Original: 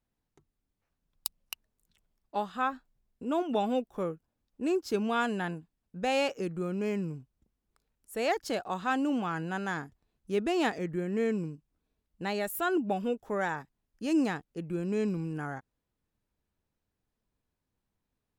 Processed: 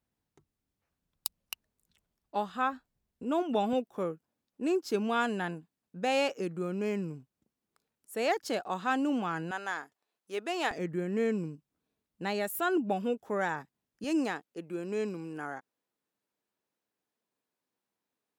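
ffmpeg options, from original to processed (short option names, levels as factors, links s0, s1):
-af "asetnsamples=n=441:p=0,asendcmd='3.73 highpass f 160;9.51 highpass f 540;10.71 highpass f 130;14.04 highpass f 300',highpass=54"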